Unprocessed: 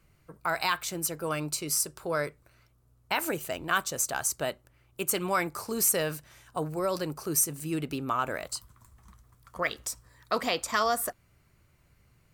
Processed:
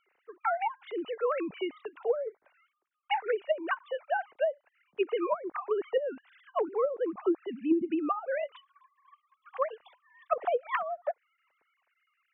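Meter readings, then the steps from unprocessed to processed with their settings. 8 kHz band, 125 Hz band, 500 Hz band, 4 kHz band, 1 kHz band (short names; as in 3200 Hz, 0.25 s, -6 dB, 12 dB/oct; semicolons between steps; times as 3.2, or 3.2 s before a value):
under -40 dB, under -25 dB, +3.0 dB, -12.0 dB, -1.5 dB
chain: sine-wave speech; treble ducked by the level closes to 330 Hz, closed at -22.5 dBFS; gain +2.5 dB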